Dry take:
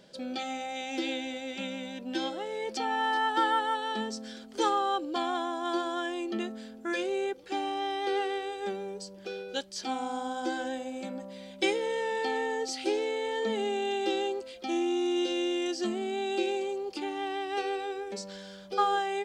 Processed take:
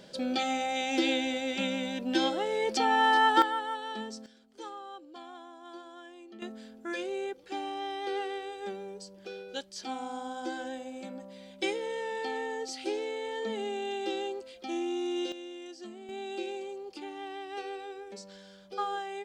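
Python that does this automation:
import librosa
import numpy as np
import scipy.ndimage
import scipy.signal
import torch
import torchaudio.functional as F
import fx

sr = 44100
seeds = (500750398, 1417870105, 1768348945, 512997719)

y = fx.gain(x, sr, db=fx.steps((0.0, 5.0), (3.42, -5.0), (4.26, -16.0), (6.42, -4.0), (15.32, -13.5), (16.09, -7.0)))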